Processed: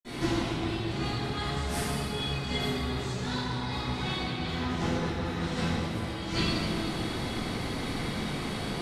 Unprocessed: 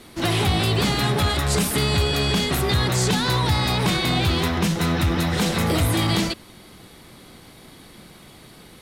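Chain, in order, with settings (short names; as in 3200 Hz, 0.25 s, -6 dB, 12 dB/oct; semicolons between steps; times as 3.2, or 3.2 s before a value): negative-ratio compressor -29 dBFS, ratio -0.5; reverb RT60 2.8 s, pre-delay 47 ms, DRR -60 dB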